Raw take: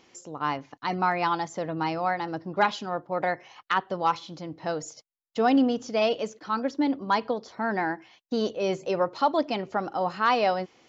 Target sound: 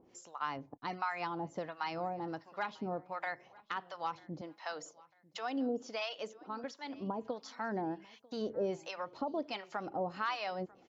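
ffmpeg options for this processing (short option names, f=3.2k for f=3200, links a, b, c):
-filter_complex "[0:a]asettb=1/sr,asplit=3[a][b][c];[a]atrim=end=4.414[d];[b]atrim=start=4.41:end=6.64,asetpts=PTS-STARTPTS,afade=t=in:d=0.004:c=qsin,afade=t=out:st=2.226:d=0.004:c=qsin,highpass=300[e];[c]atrim=start=6.636[f];[d][e]acrossfade=d=0.004:c1=hsin:c2=qsin[g];[g][f]acrossfade=d=0.004:c1=qsin:c2=hsin,acompressor=threshold=-27dB:ratio=6,acrossover=split=790[h][i];[h]aeval=exprs='val(0)*(1-1/2+1/2*cos(2*PI*1.4*n/s))':c=same[j];[i]aeval=exprs='val(0)*(1-1/2-1/2*cos(2*PI*1.4*n/s))':c=same[k];[j][k]amix=inputs=2:normalize=0,aecho=1:1:945|1890:0.0668|0.0227,volume=-1dB"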